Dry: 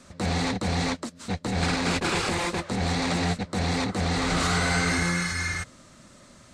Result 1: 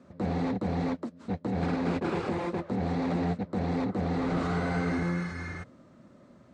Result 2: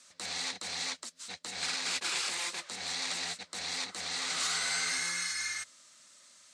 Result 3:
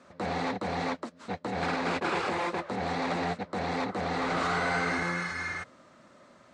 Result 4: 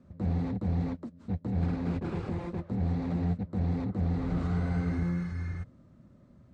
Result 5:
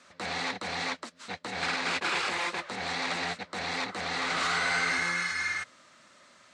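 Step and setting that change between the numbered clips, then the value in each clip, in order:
band-pass filter, frequency: 300 Hz, 6.8 kHz, 780 Hz, 100 Hz, 2 kHz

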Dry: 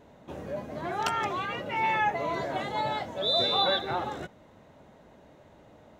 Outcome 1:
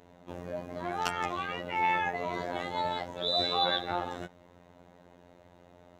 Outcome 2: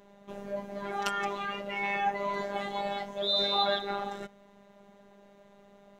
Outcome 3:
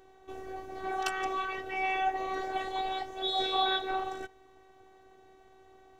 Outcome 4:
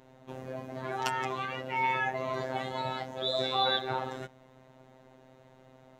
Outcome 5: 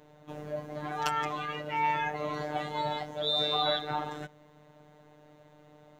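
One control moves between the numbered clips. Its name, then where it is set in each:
robot voice, frequency: 88 Hz, 200 Hz, 380 Hz, 130 Hz, 150 Hz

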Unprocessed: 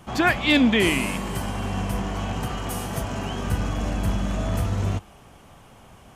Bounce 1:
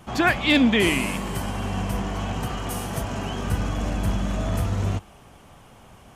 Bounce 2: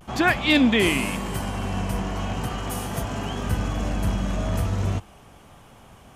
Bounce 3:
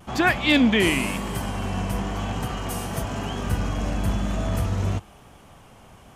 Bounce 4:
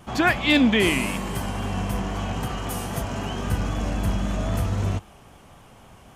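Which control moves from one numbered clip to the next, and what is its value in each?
vibrato, rate: 15 Hz, 0.39 Hz, 1 Hz, 3.8 Hz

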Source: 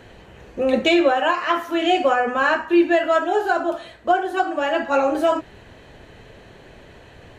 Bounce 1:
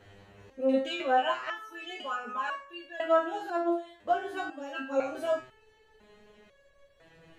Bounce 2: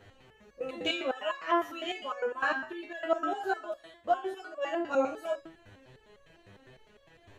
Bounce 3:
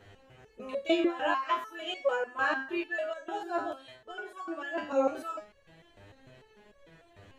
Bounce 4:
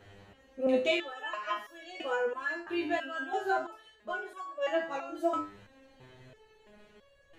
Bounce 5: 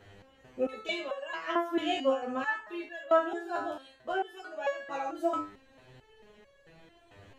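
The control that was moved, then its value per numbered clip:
resonator arpeggio, rate: 2 Hz, 9.9 Hz, 6.7 Hz, 3 Hz, 4.5 Hz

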